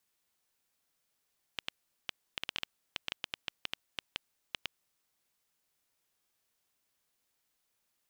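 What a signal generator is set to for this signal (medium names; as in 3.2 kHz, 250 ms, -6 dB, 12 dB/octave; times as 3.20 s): random clicks 5 per s -16 dBFS 4.18 s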